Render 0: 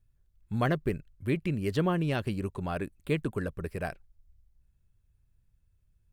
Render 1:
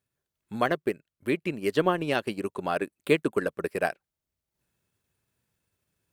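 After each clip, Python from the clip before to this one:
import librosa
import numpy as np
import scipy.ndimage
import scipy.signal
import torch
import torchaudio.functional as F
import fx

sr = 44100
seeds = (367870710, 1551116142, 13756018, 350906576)

y = scipy.signal.sosfilt(scipy.signal.butter(2, 290.0, 'highpass', fs=sr, output='sos'), x)
y = fx.transient(y, sr, attack_db=2, sustain_db=-8)
y = fx.rider(y, sr, range_db=10, speed_s=2.0)
y = y * librosa.db_to_amplitude(5.5)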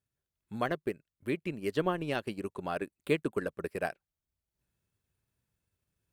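y = fx.low_shelf(x, sr, hz=110.0, db=10.5)
y = y * librosa.db_to_amplitude(-7.0)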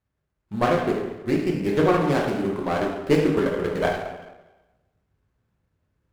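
y = scipy.signal.medfilt(x, 9)
y = fx.rev_plate(y, sr, seeds[0], rt60_s=1.1, hf_ratio=0.65, predelay_ms=0, drr_db=-2.5)
y = fx.running_max(y, sr, window=9)
y = y * librosa.db_to_amplitude(7.0)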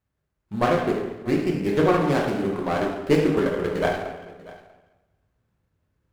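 y = x + 10.0 ** (-20.0 / 20.0) * np.pad(x, (int(641 * sr / 1000.0), 0))[:len(x)]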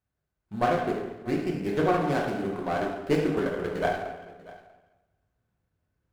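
y = fx.small_body(x, sr, hz=(710.0, 1500.0), ring_ms=45, db=7)
y = y * librosa.db_to_amplitude(-5.5)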